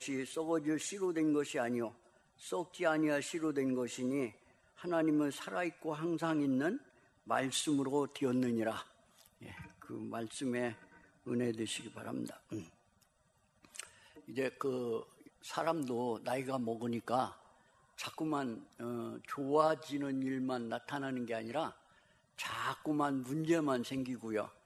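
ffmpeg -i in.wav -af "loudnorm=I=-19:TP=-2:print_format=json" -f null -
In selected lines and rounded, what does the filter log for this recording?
"input_i" : "-36.9",
"input_tp" : "-15.5",
"input_lra" : "5.8",
"input_thresh" : "-47.7",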